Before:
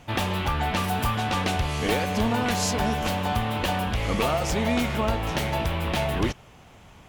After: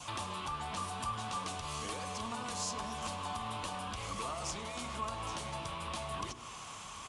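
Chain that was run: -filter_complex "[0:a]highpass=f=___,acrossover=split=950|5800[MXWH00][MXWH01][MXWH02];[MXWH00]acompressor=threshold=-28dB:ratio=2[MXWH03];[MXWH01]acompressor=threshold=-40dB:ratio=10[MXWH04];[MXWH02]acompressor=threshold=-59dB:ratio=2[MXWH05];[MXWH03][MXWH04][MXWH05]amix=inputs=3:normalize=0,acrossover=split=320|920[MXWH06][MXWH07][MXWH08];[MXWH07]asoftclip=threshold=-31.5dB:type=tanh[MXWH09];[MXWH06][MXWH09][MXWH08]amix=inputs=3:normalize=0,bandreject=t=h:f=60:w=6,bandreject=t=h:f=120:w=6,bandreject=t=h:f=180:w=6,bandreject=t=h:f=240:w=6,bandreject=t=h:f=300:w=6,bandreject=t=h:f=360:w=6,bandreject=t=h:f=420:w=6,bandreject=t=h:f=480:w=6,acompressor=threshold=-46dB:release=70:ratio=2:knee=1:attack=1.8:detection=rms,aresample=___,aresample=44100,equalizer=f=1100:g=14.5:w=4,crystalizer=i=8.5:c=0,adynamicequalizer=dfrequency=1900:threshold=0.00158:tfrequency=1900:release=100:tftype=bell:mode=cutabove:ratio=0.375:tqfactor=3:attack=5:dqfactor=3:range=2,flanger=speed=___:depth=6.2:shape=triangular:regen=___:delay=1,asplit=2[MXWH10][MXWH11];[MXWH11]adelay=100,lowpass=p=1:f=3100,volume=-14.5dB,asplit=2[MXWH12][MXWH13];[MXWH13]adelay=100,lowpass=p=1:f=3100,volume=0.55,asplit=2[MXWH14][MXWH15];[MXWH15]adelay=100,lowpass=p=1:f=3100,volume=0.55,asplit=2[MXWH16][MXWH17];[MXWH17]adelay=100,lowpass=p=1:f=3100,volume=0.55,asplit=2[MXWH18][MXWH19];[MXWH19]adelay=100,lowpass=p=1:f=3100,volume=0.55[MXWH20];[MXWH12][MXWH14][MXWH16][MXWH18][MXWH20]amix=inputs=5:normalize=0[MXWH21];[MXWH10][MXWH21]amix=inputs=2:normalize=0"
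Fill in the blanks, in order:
42, 22050, 0.97, -61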